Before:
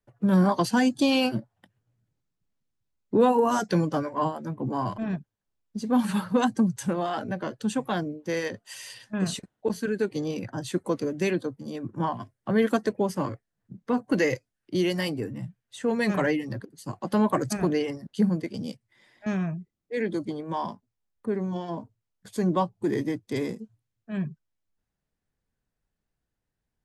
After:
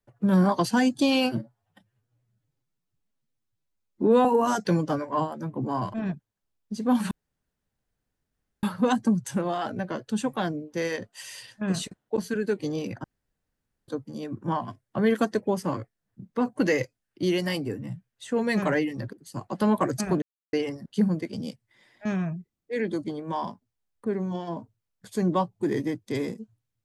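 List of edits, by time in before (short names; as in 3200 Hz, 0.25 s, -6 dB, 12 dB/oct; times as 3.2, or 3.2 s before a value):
1.37–3.29 stretch 1.5×
6.15 insert room tone 1.52 s
10.56–11.4 room tone
17.74 insert silence 0.31 s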